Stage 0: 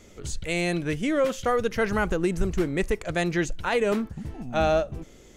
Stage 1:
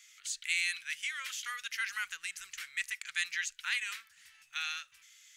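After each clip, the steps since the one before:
inverse Chebyshev high-pass filter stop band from 690 Hz, stop band 50 dB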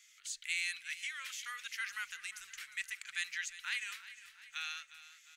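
repeating echo 355 ms, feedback 55%, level −15 dB
level −4.5 dB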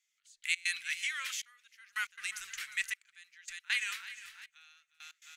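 gate pattern "....x.xxxxxxx." 138 BPM −24 dB
level +6 dB

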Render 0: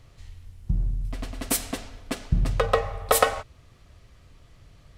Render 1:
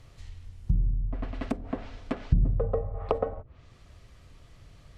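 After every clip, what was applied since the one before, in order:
treble cut that deepens with the level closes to 390 Hz, closed at −23 dBFS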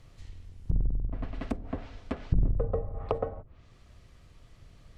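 sub-octave generator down 2 octaves, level −2 dB
level −3 dB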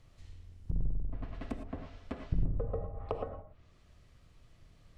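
reverb whose tail is shaped and stops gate 130 ms rising, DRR 6 dB
level −6.5 dB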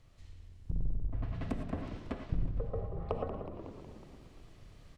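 on a send: echo with shifted repeats 184 ms, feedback 61%, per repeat −61 Hz, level −10.5 dB
on the sum: speech leveller within 4 dB 0.5 s
feedback echo with a swinging delay time 229 ms, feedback 65%, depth 197 cents, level −18 dB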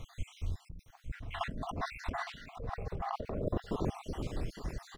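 time-frequency cells dropped at random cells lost 59%
compressor whose output falls as the input rises −47 dBFS, ratio −1
single-tap delay 860 ms −13 dB
level +11 dB

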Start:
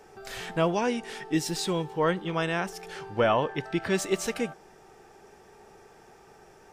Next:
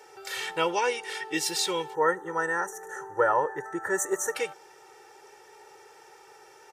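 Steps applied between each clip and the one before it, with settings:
high-pass filter 930 Hz 6 dB per octave
gain on a spectral selection 0:01.95–0:04.35, 2,000–5,700 Hz −26 dB
comb filter 2.2 ms, depth 82%
level +3 dB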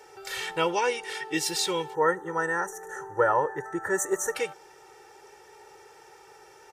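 low-shelf EQ 150 Hz +9.5 dB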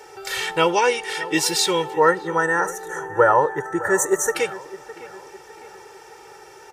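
delay with a low-pass on its return 609 ms, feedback 43%, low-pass 2,400 Hz, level −16.5 dB
level +7.5 dB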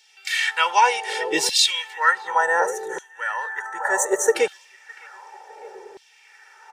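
thirty-one-band graphic EQ 100 Hz +8 dB, 315 Hz −11 dB, 1,250 Hz −8 dB, 12,500 Hz −8 dB
auto-filter high-pass saw down 0.67 Hz 290–3,700 Hz
one half of a high-frequency compander decoder only

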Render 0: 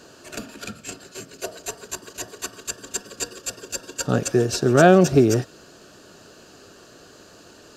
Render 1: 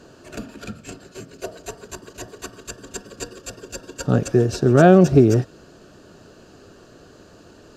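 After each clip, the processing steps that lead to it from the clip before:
spectral tilt −2 dB per octave
level −1 dB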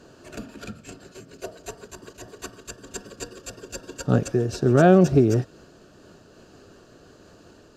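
amplitude modulation by smooth noise, depth 60%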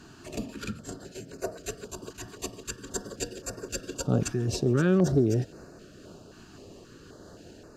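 in parallel at −2 dB: compressor whose output falls as the input rises −28 dBFS, ratio −1
on the sum: notch on a step sequencer 3.8 Hz 530–3,200 Hz
level −6.5 dB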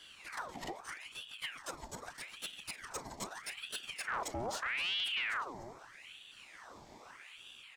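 single-tap delay 296 ms −18 dB
soft clipping −28.5 dBFS, distortion −6 dB
ring modulator whose carrier an LFO sweeps 1,800 Hz, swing 75%, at 0.8 Hz
level −2.5 dB

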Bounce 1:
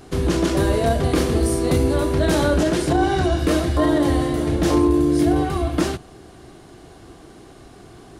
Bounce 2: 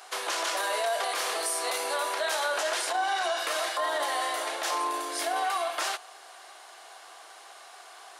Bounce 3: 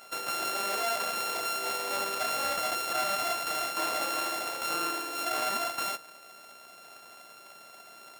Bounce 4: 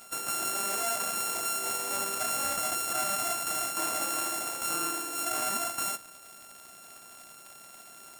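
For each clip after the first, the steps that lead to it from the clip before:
inverse Chebyshev high-pass filter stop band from 160 Hz, stop band 70 dB; brickwall limiter −23 dBFS, peak gain reduction 8.5 dB; level +3 dB
samples sorted by size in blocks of 32 samples; level −2 dB
octave-band graphic EQ 500/1,000/2,000/4,000/8,000 Hz −8/−4/−5/−10/+6 dB; surface crackle 150 per second −44 dBFS; level +4 dB

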